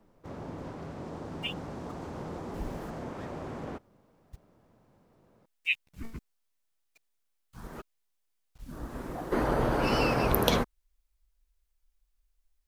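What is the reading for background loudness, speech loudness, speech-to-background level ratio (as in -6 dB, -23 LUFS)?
-40.5 LUFS, -29.5 LUFS, 11.0 dB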